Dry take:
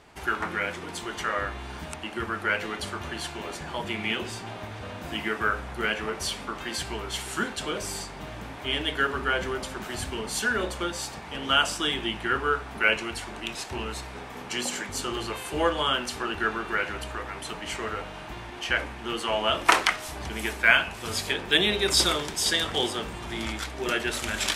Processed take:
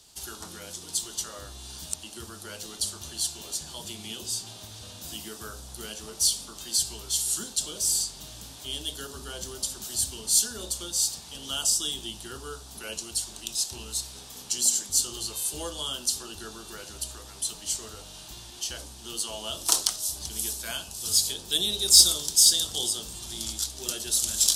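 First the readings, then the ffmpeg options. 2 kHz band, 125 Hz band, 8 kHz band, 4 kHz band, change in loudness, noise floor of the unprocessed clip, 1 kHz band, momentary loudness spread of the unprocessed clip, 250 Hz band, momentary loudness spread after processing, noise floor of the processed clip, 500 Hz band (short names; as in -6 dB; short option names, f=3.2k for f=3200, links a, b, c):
-19.0 dB, -7.0 dB, +11.5 dB, +1.0 dB, +2.0 dB, -40 dBFS, -15.5 dB, 13 LU, -10.5 dB, 17 LU, -45 dBFS, -12.0 dB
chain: -filter_complex "[0:a]acrossover=split=140|1300|3500[a][b][c][d];[c]acompressor=threshold=-45dB:ratio=6[e];[a][b][e][d]amix=inputs=4:normalize=0,lowshelf=f=190:g=8,aexciter=amount=10:drive=7.7:freq=3.3k,volume=-13dB"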